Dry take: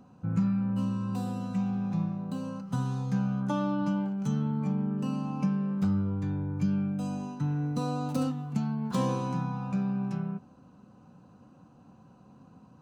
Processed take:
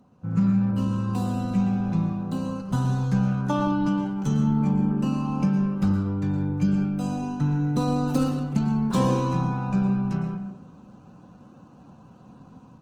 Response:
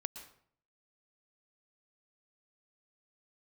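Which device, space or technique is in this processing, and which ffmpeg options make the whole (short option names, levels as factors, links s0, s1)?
speakerphone in a meeting room: -filter_complex "[1:a]atrim=start_sample=2205[s0];[0:a][s0]afir=irnorm=-1:irlink=0,dynaudnorm=f=220:g=3:m=2.51" -ar 48000 -c:a libopus -b:a 16k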